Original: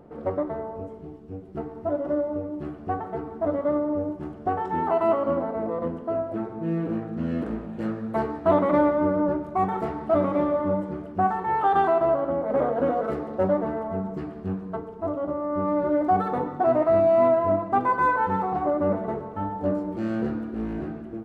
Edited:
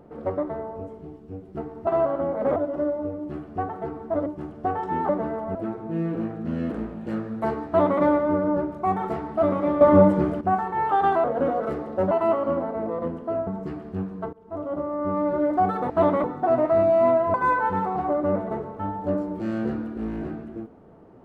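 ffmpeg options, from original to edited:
-filter_complex "[0:a]asplit=15[s0][s1][s2][s3][s4][s5][s6][s7][s8][s9][s10][s11][s12][s13][s14];[s0]atrim=end=1.872[s15];[s1]atrim=start=11.958:end=12.652[s16];[s2]atrim=start=1.868:end=3.572[s17];[s3]atrim=start=4.078:end=4.912[s18];[s4]atrim=start=13.518:end=13.982[s19];[s5]atrim=start=6.268:end=10.532[s20];[s6]atrim=start=10.528:end=11.132,asetpts=PTS-STARTPTS,volume=3.35[s21];[s7]atrim=start=11.128:end=11.962[s22];[s8]atrim=start=12.648:end=13.522[s23];[s9]atrim=start=4.908:end=6.272[s24];[s10]atrim=start=13.978:end=14.84,asetpts=PTS-STARTPTS,afade=t=out:st=0.858:d=0.004:c=hsin:silence=0.0944061[s25];[s11]atrim=start=14.84:end=16.412,asetpts=PTS-STARTPTS,afade=t=in:d=0.41:silence=0.0944061[s26];[s12]atrim=start=8.388:end=8.732[s27];[s13]atrim=start=16.408:end=17.512[s28];[s14]atrim=start=17.908[s29];[s15][s16]acrossfade=d=0.004:c1=hsin:c2=hsin[s30];[s30][s17]acrossfade=d=0.004:c1=hsin:c2=hsin[s31];[s31][s18]acrossfade=d=0.004:c1=hsin:c2=hsin[s32];[s32][s19]acrossfade=d=0.004:c1=hsin:c2=hsin[s33];[s33][s20]acrossfade=d=0.004:c1=hsin:c2=hsin[s34];[s34][s21]acrossfade=d=0.004:c1=hsin:c2=hsin[s35];[s35][s22]acrossfade=d=0.004:c1=hsin:c2=hsin[s36];[s36][s23]acrossfade=d=0.004:c1=hsin:c2=hsin[s37];[s37][s24]acrossfade=d=0.004:c1=hsin:c2=hsin[s38];[s25][s26]concat=n=2:v=0:a=1[s39];[s38][s39]acrossfade=d=0.004:c1=hsin:c2=hsin[s40];[s40][s27]acrossfade=d=0.004:c1=hsin:c2=hsin[s41];[s41][s28]acrossfade=d=0.004:c1=hsin:c2=hsin[s42];[s42][s29]acrossfade=d=0.004:c1=hsin:c2=hsin"

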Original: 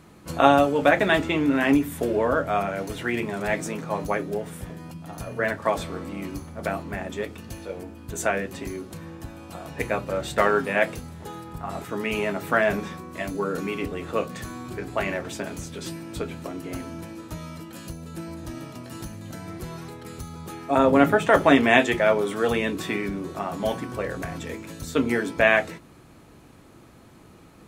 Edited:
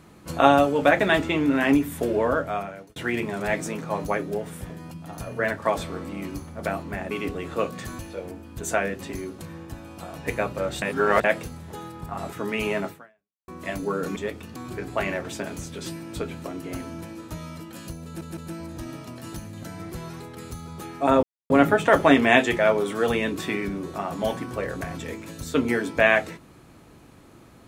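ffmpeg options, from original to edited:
-filter_complex "[0:a]asplit=12[s0][s1][s2][s3][s4][s5][s6][s7][s8][s9][s10][s11];[s0]atrim=end=2.96,asetpts=PTS-STARTPTS,afade=t=out:st=2.29:d=0.67[s12];[s1]atrim=start=2.96:end=7.112,asetpts=PTS-STARTPTS,afade=t=in:d=0.004:c=hsin[s13];[s2]atrim=start=13.678:end=14.562[s14];[s3]atrim=start=7.508:end=10.342[s15];[s4]atrim=start=10.338:end=10.762,asetpts=PTS-STARTPTS,areverse[s16];[s5]atrim=start=10.758:end=13,asetpts=PTS-STARTPTS,afade=t=out:st=1.632:d=0.61:c=exp[s17];[s6]atrim=start=13:end=13.682,asetpts=PTS-STARTPTS,afade=t=in:d=0.004:c=hsin[s18];[s7]atrim=start=7.108:end=7.512[s19];[s8]atrim=start=14.558:end=18.212[s20];[s9]atrim=start=18.048:end=18.212[s21];[s10]atrim=start=18.048:end=20.91,asetpts=PTS-STARTPTS,afade=t=out:st=2.858:d=0.004:c=hsin,apad=pad_dur=0.27[s22];[s11]atrim=start=20.91,asetpts=PTS-STARTPTS,afade=t=in:d=0.004:c=hsin[s23];[s12][s13]concat=n=2:v=0:a=1[s24];[s24][s14]acrossfade=d=0.004:c1=hsin:c2=hsin[s25];[s25][s15]acrossfade=d=0.004:c1=hsin:c2=hsin[s26];[s26][s16]acrossfade=d=0.004:c1=hsin:c2=hsin[s27];[s17][s18]concat=n=2:v=0:a=1[s28];[s27][s28]acrossfade=d=0.004:c1=hsin:c2=hsin[s29];[s29][s19]acrossfade=d=0.004:c1=hsin:c2=hsin[s30];[s30][s20]acrossfade=d=0.004:c1=hsin:c2=hsin[s31];[s31][s21]acrossfade=d=0.004:c1=hsin:c2=hsin[s32];[s22][s23]concat=n=2:v=0:a=1[s33];[s32][s33]acrossfade=d=0.004:c1=hsin:c2=hsin"

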